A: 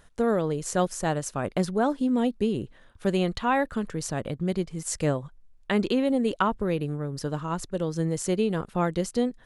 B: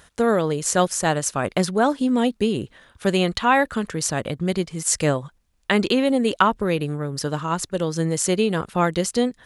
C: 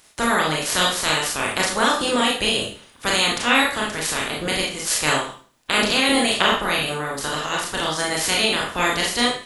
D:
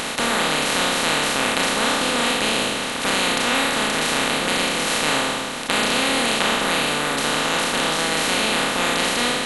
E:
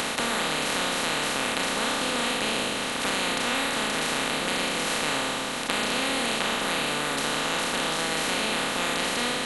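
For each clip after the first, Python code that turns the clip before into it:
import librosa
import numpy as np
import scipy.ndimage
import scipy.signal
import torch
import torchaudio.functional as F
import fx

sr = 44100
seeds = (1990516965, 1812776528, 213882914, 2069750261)

y1 = scipy.signal.sosfilt(scipy.signal.butter(2, 42.0, 'highpass', fs=sr, output='sos'), x)
y1 = fx.tilt_shelf(y1, sr, db=-3.5, hz=970.0)
y1 = y1 * 10.0 ** (7.0 / 20.0)
y2 = fx.spec_clip(y1, sr, under_db=25)
y2 = fx.rev_schroeder(y2, sr, rt60_s=0.42, comb_ms=26, drr_db=-2.5)
y2 = y2 * 10.0 ** (-3.5 / 20.0)
y3 = fx.bin_compress(y2, sr, power=0.2)
y3 = y3 * 10.0 ** (-9.0 / 20.0)
y4 = fx.band_squash(y3, sr, depth_pct=70)
y4 = y4 * 10.0 ** (-6.5 / 20.0)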